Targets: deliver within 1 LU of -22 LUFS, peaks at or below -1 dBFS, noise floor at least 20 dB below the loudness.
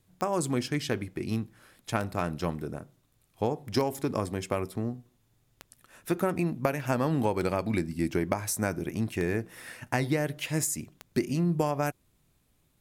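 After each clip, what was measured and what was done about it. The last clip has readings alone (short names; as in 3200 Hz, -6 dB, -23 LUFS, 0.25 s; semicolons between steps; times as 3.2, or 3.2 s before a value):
clicks 7; loudness -30.5 LUFS; peak -8.5 dBFS; loudness target -22.0 LUFS
-> de-click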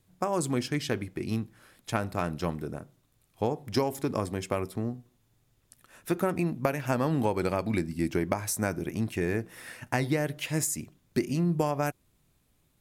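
clicks 0; loudness -30.5 LUFS; peak -8.5 dBFS; loudness target -22.0 LUFS
-> gain +8.5 dB; limiter -1 dBFS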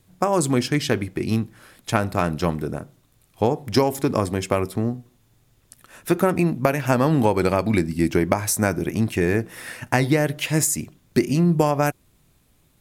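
loudness -22.0 LUFS; peak -1.0 dBFS; noise floor -61 dBFS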